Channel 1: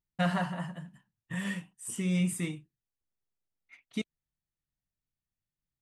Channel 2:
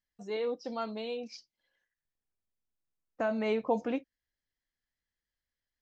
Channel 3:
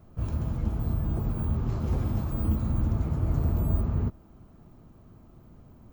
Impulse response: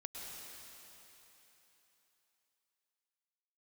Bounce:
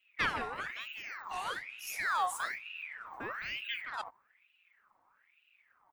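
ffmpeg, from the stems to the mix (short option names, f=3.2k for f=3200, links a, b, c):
-filter_complex "[0:a]volume=-1dB[a];[1:a]volume=-8.5dB,asplit=2[b][c];[2:a]aecho=1:1:5:0.89,volume=-17.5dB[d];[c]apad=whole_len=256395[e];[a][e]sidechaincompress=threshold=-43dB:ratio=8:attack=16:release=106[f];[f][b][d]amix=inputs=3:normalize=0,aeval=exprs='val(0)*sin(2*PI*1800*n/s+1800*0.5/1.1*sin(2*PI*1.1*n/s))':c=same"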